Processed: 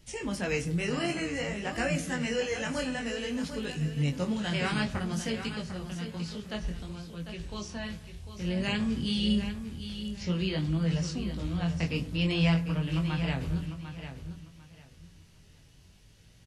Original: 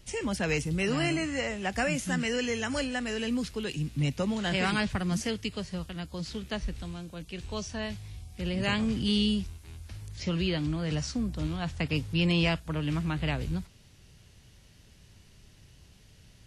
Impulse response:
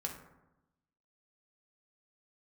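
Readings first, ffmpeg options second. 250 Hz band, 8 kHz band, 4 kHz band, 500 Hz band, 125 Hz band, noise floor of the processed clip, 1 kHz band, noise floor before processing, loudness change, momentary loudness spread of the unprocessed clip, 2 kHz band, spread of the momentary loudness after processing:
−0.5 dB, −2.0 dB, −2.0 dB, −1.5 dB, +1.0 dB, −57 dBFS, −2.5 dB, −57 dBFS, −1.0 dB, 11 LU, −2.0 dB, 12 LU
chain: -filter_complex "[0:a]flanger=delay=18:depth=6:speed=0.55,aecho=1:1:748|1496|2244:0.316|0.0696|0.0153,asplit=2[link_01][link_02];[1:a]atrim=start_sample=2205[link_03];[link_02][link_03]afir=irnorm=-1:irlink=0,volume=-5.5dB[link_04];[link_01][link_04]amix=inputs=2:normalize=0,volume=-2.5dB"

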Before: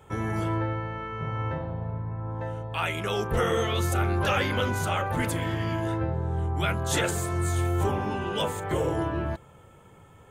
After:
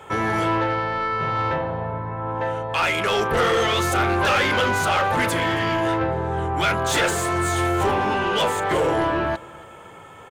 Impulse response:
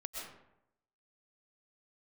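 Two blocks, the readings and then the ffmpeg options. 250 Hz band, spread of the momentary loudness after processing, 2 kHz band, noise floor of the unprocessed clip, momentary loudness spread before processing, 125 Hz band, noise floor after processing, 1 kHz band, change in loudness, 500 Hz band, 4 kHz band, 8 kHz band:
+5.0 dB, 7 LU, +10.0 dB, −53 dBFS, 8 LU, −0.5 dB, −43 dBFS, +10.0 dB, +6.5 dB, +7.0 dB, +8.5 dB, +5.5 dB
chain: -filter_complex "[0:a]asplit=2[link_01][link_02];[link_02]highpass=frequency=720:poles=1,volume=19dB,asoftclip=type=tanh:threshold=-14dB[link_03];[link_01][link_03]amix=inputs=2:normalize=0,lowpass=frequency=3800:poles=1,volume=-6dB,aecho=1:1:275|550|825:0.0708|0.0269|0.0102,volume=2dB"

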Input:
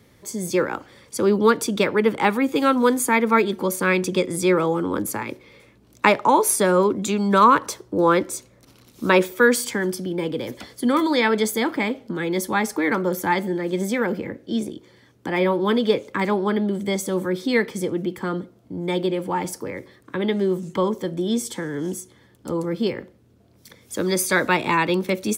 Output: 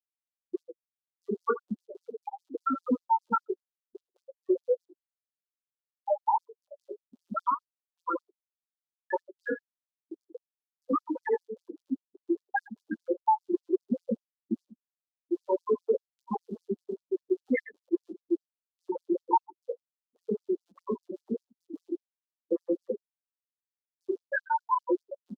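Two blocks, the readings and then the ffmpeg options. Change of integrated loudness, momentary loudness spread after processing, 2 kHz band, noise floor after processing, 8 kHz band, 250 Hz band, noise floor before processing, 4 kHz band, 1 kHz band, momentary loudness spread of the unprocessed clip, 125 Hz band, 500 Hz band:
−11.0 dB, 16 LU, −17.0 dB, below −85 dBFS, below −40 dB, −12.0 dB, −55 dBFS, below −40 dB, −8.5 dB, 13 LU, below −20 dB, −11.0 dB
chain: -filter_complex "[0:a]aeval=exprs='val(0)+0.5*0.0376*sgn(val(0))':channel_layout=same,bandreject=frequency=60:width_type=h:width=6,bandreject=frequency=120:width_type=h:width=6,bandreject=frequency=180:width_type=h:width=6,bandreject=frequency=240:width_type=h:width=6,bandreject=frequency=300:width_type=h:width=6,bandreject=frequency=360:width_type=h:width=6,bandreject=frequency=420:width_type=h:width=6,bandreject=frequency=480:width_type=h:width=6,bandreject=frequency=540:width_type=h:width=6,asplit=2[link_01][link_02];[link_02]aeval=exprs='clip(val(0),-1,0.126)':channel_layout=same,volume=-5dB[link_03];[link_01][link_03]amix=inputs=2:normalize=0,highshelf=frequency=4900:gain=2,dynaudnorm=framelen=410:gausssize=5:maxgain=13.5dB,afftfilt=real='re*gte(hypot(re,im),1.58)':imag='im*gte(hypot(re,im),1.58)':win_size=1024:overlap=0.75,asplit=2[link_04][link_05];[link_05]aecho=0:1:83:0.15[link_06];[link_04][link_06]amix=inputs=2:normalize=0,flanger=delay=8.9:depth=9.6:regen=4:speed=0.39:shape=triangular,aexciter=amount=11.2:drive=4.3:freq=3100,acompressor=threshold=-20dB:ratio=6,afftfilt=real='re*gte(b*sr/1024,200*pow(4600/200,0.5+0.5*sin(2*PI*5*pts/sr)))':imag='im*gte(b*sr/1024,200*pow(4600/200,0.5+0.5*sin(2*PI*5*pts/sr)))':win_size=1024:overlap=0.75"

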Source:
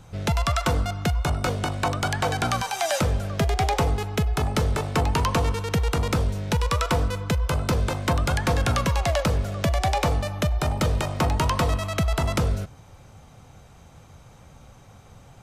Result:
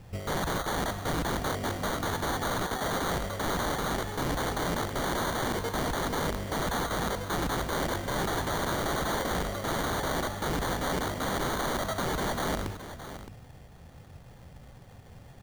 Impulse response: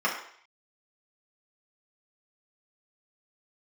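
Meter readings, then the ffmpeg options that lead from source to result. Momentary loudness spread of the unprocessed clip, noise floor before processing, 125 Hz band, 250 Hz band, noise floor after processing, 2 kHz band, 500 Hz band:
3 LU, −49 dBFS, −11.5 dB, −4.5 dB, −50 dBFS, −2.5 dB, −4.0 dB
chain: -filter_complex "[0:a]lowpass=frequency=6100:width=0.5412,lowpass=frequency=6100:width=1.3066,bandreject=frequency=50:width_type=h:width=6,bandreject=frequency=100:width_type=h:width=6,bandreject=frequency=150:width_type=h:width=6,bandreject=frequency=200:width_type=h:width=6,bandreject=frequency=250:width_type=h:width=6,bandreject=frequency=300:width_type=h:width=6,adynamicsmooth=sensitivity=7.5:basefreq=1100,acrusher=samples=17:mix=1:aa=0.000001,aeval=exprs='(mod(17.8*val(0)+1,2)-1)/17.8':channel_layout=same,asplit=2[link_01][link_02];[link_02]aecho=0:1:617:0.251[link_03];[link_01][link_03]amix=inputs=2:normalize=0"

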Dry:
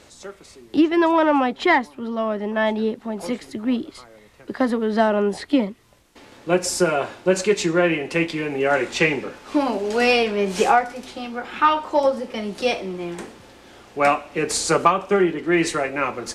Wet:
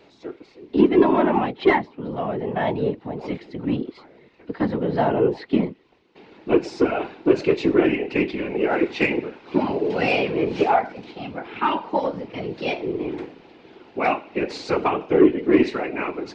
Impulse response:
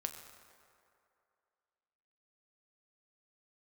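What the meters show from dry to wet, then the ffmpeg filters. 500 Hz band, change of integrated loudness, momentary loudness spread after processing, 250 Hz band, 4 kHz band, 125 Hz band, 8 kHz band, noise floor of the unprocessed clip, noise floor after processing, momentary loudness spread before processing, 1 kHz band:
−0.5 dB, −1.0 dB, 14 LU, +0.5 dB, −6.5 dB, +1.0 dB, below −20 dB, −50 dBFS, −54 dBFS, 13 LU, −3.5 dB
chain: -af "highpass=190,equalizer=frequency=370:width_type=q:width=4:gain=8,equalizer=frequency=530:width_type=q:width=4:gain=-8,equalizer=frequency=1200:width_type=q:width=4:gain=-7,equalizer=frequency=1700:width_type=q:width=4:gain=-6,equalizer=frequency=3300:width_type=q:width=4:gain=-5,lowpass=frequency=3800:width=0.5412,lowpass=frequency=3800:width=1.3066,acontrast=40,afftfilt=real='hypot(re,im)*cos(2*PI*random(0))':imag='hypot(re,im)*sin(2*PI*random(1))':win_size=512:overlap=0.75"

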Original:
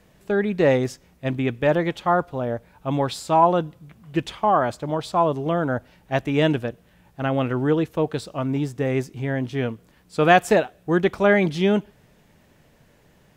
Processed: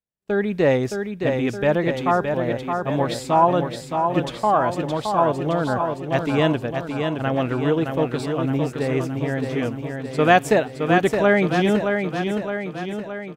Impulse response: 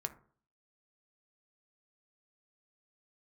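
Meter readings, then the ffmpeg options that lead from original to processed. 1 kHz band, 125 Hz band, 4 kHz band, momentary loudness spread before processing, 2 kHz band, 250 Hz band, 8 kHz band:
+1.5 dB, +1.0 dB, +1.5 dB, 11 LU, +1.5 dB, +1.5 dB, +1.5 dB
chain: -af "agate=range=-41dB:threshold=-49dB:ratio=16:detection=peak,aecho=1:1:618|1236|1854|2472|3090|3708|4326|4944:0.531|0.308|0.179|0.104|0.0601|0.0348|0.0202|0.0117"

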